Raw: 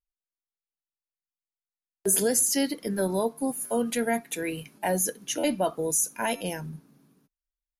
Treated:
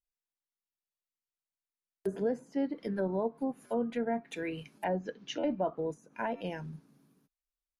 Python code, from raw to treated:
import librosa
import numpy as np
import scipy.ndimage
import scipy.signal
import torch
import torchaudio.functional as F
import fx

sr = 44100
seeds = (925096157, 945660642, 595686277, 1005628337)

y = fx.lowpass(x, sr, hz=5000.0, slope=24, at=(4.84, 5.5))
y = fx.env_lowpass_down(y, sr, base_hz=1100.0, full_db=-23.0)
y = y * 10.0 ** (-5.0 / 20.0)